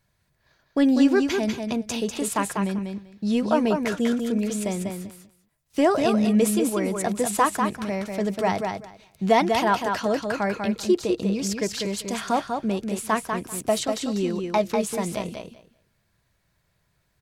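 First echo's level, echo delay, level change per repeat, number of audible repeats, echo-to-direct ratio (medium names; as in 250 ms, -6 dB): -5.0 dB, 195 ms, -16.0 dB, 2, -5.0 dB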